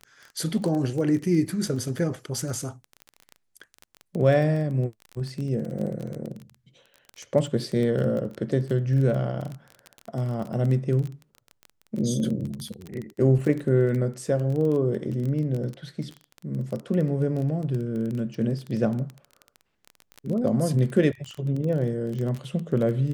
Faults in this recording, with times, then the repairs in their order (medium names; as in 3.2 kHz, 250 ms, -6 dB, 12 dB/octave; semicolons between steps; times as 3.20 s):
crackle 20 per s -29 dBFS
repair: de-click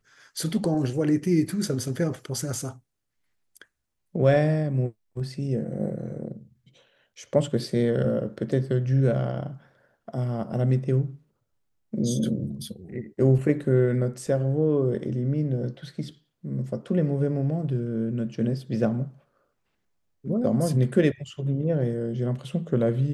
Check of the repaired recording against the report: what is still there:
nothing left